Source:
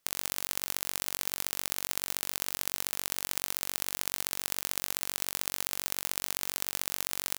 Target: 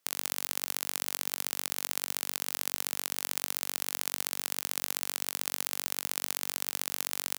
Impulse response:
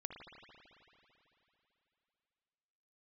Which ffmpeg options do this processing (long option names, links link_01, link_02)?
-af "highpass=170"